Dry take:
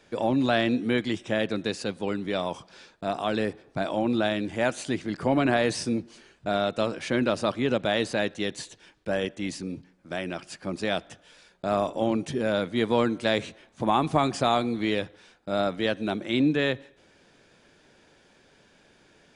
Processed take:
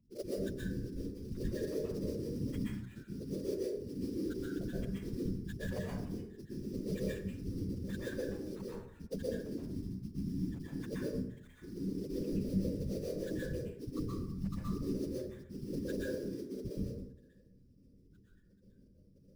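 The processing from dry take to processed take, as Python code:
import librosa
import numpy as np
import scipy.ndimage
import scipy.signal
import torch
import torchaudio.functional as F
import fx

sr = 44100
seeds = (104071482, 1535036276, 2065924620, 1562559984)

y = fx.local_reverse(x, sr, ms=114.0)
y = scipy.signal.sosfilt(scipy.signal.cheby1(2, 1.0, [410.0, 1500.0], 'bandstop', fs=sr, output='sos'), y)
y = fx.low_shelf(y, sr, hz=180.0, db=8.5)
y = y + 0.71 * np.pad(y, (int(6.8 * sr / 1000.0), 0))[:len(y)]
y = fx.over_compress(y, sr, threshold_db=-29.0, ratio=-1.0)
y = fx.spec_topn(y, sr, count=2)
y = fx.fixed_phaser(y, sr, hz=1300.0, stages=8)
y = fx.sample_hold(y, sr, seeds[0], rate_hz=5300.0, jitter_pct=20)
y = fx.whisperise(y, sr, seeds[1])
y = fx.rev_plate(y, sr, seeds[2], rt60_s=0.72, hf_ratio=0.5, predelay_ms=110, drr_db=-6.0)
y = F.gain(torch.from_numpy(y), -4.5).numpy()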